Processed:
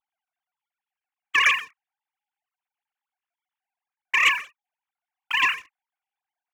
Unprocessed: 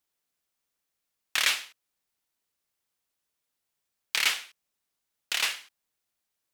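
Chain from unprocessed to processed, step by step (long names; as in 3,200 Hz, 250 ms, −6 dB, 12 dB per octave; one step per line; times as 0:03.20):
three sine waves on the formant tracks
spectral tilt −3 dB per octave
leveller curve on the samples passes 2
level +4 dB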